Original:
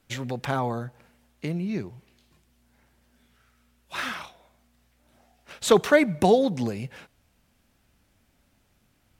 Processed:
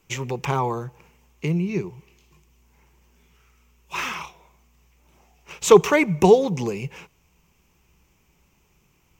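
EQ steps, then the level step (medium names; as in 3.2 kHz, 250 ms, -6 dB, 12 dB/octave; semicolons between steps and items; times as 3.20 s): rippled EQ curve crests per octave 0.75, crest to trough 11 dB; +2.5 dB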